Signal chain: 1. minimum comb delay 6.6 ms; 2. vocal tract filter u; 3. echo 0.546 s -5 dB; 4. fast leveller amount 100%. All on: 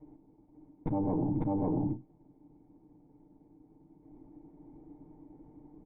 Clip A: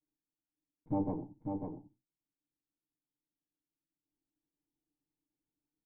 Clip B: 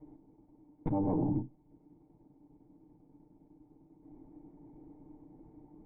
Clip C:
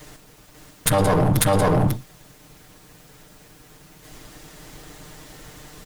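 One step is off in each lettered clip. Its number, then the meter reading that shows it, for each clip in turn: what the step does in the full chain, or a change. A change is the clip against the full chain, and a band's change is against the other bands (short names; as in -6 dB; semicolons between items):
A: 4, crest factor change +5.5 dB; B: 3, momentary loudness spread change +3 LU; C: 2, 250 Hz band -9.5 dB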